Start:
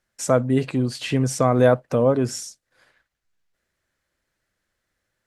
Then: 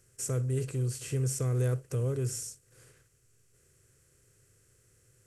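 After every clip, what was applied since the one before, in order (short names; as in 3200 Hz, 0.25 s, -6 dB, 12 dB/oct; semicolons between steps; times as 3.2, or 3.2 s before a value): per-bin compression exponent 0.6; EQ curve 120 Hz 0 dB, 240 Hz -21 dB, 420 Hz -7 dB, 620 Hz -27 dB, 920 Hz -25 dB, 1500 Hz -17 dB, 2500 Hz -14 dB, 3600 Hz -18 dB, 7600 Hz -2 dB, 13000 Hz +1 dB; gain -4 dB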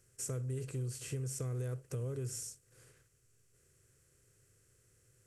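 compressor, threshold -31 dBFS, peak gain reduction 7 dB; gain -4 dB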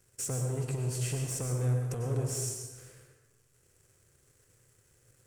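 sample leveller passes 2; plate-style reverb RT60 1.2 s, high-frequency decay 0.65×, pre-delay 85 ms, DRR 2 dB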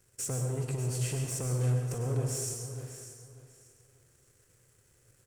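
feedback echo 0.594 s, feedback 24%, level -12 dB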